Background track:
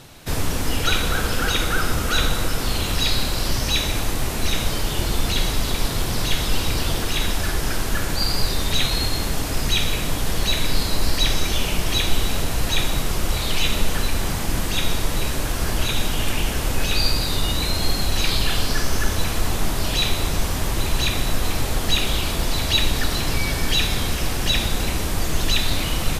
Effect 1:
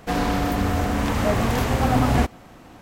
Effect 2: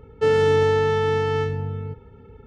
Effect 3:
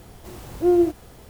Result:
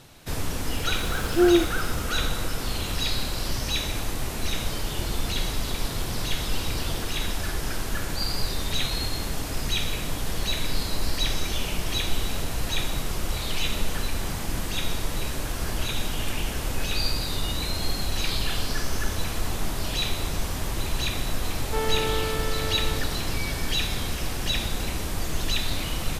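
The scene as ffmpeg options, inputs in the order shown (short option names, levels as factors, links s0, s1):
-filter_complex "[0:a]volume=0.501[s0];[2:a]aeval=exprs='max(val(0),0)':c=same[s1];[3:a]atrim=end=1.29,asetpts=PTS-STARTPTS,volume=0.891,afade=t=in:d=0.004:c=hsin,afade=t=out:st=1.286:d=0.004:c=hsin,adelay=740[s2];[s1]atrim=end=2.46,asetpts=PTS-STARTPTS,volume=0.473,afade=t=in:d=0.004:c=hsin,afade=t=out:st=2.456:d=0.004:c=hsin,adelay=21510[s3];[s0][s2][s3]amix=inputs=3:normalize=0"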